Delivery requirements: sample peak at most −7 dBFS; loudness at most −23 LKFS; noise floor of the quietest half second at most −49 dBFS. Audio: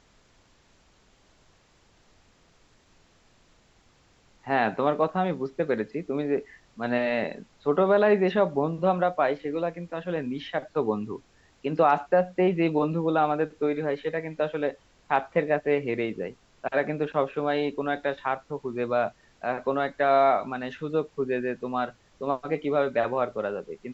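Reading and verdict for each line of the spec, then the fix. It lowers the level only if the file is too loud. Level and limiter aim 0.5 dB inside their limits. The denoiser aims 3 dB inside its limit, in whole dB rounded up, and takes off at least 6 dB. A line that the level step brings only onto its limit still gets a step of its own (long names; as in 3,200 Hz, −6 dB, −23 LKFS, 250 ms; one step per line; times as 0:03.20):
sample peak −9.5 dBFS: in spec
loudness −27.0 LKFS: in spec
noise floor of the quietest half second −61 dBFS: in spec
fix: no processing needed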